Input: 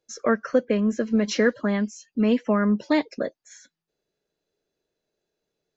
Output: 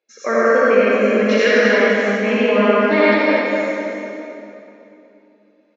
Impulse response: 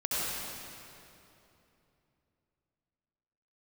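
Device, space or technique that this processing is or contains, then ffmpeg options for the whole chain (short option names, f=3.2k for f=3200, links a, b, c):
station announcement: -filter_complex "[0:a]highpass=360,lowpass=3.7k,equalizer=f=2.3k:t=o:w=0.46:g=10,aecho=1:1:43.73|244.9:0.355|0.501[a];[1:a]atrim=start_sample=2205[b];[a][b]afir=irnorm=-1:irlink=0,volume=2dB"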